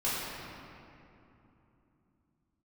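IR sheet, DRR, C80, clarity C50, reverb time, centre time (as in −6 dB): −10.5 dB, −1.5 dB, −3.0 dB, 3.0 s, 169 ms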